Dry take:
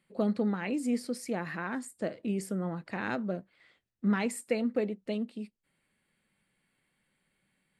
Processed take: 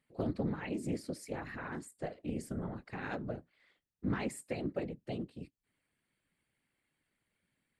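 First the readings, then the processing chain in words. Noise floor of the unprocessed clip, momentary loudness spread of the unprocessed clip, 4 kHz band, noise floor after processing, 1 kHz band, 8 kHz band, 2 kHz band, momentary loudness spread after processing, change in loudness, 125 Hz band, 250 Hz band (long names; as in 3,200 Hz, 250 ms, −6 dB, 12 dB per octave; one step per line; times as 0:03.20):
−79 dBFS, 8 LU, −6.5 dB, −85 dBFS, −6.0 dB, −7.0 dB, −7.0 dB, 8 LU, −6.5 dB, −2.0 dB, −7.5 dB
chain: random phases in short frames
highs frequency-modulated by the lows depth 0.21 ms
level −6.5 dB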